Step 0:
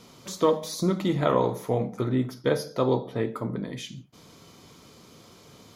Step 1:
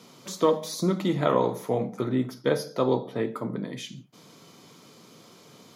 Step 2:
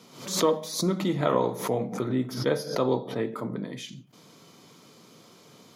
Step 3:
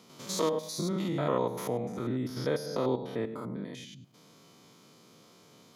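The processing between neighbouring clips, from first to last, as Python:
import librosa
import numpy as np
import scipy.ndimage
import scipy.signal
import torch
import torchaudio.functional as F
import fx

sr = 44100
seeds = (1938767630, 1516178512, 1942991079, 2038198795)

y1 = scipy.signal.sosfilt(scipy.signal.butter(4, 130.0, 'highpass', fs=sr, output='sos'), x)
y2 = fx.pre_swell(y1, sr, db_per_s=100.0)
y2 = y2 * 10.0 ** (-1.5 / 20.0)
y3 = fx.spec_steps(y2, sr, hold_ms=100)
y3 = y3 * 10.0 ** (-3.0 / 20.0)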